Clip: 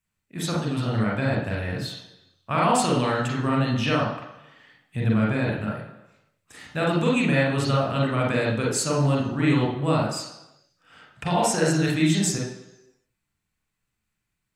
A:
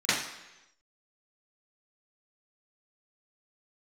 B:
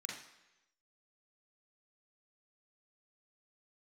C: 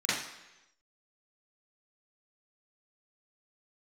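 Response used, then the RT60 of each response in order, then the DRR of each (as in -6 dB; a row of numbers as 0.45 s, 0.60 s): B; 1.0 s, 1.0 s, 1.0 s; -19.0 dB, -3.0 dB, -12.5 dB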